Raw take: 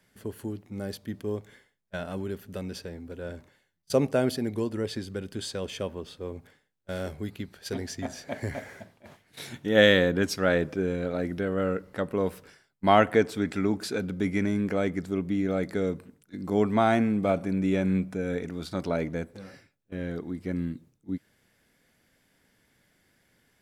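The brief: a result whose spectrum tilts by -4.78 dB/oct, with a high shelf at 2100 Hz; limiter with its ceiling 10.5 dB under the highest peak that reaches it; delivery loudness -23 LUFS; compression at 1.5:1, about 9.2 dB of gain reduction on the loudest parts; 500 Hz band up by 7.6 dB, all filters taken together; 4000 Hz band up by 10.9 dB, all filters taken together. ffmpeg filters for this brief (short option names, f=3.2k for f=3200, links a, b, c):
-af "equalizer=f=500:t=o:g=8.5,highshelf=f=2.1k:g=5.5,equalizer=f=4k:t=o:g=8.5,acompressor=threshold=-33dB:ratio=1.5,volume=8dB,alimiter=limit=-10dB:level=0:latency=1"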